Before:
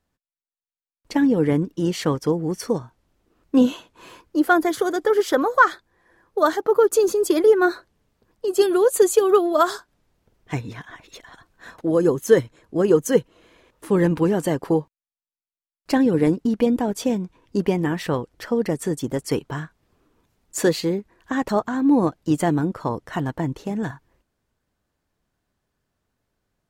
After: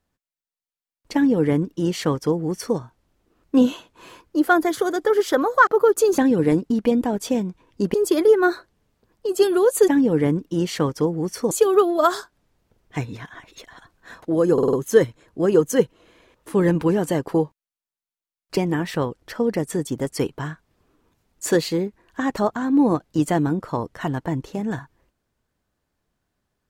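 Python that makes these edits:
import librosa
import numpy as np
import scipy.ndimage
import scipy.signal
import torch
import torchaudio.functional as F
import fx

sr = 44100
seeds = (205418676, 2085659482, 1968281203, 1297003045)

y = fx.edit(x, sr, fx.duplicate(start_s=1.14, length_s=1.63, to_s=9.07),
    fx.cut(start_s=5.67, length_s=0.95),
    fx.stutter(start_s=12.09, slice_s=0.05, count=5),
    fx.move(start_s=15.93, length_s=1.76, to_s=7.13), tone=tone)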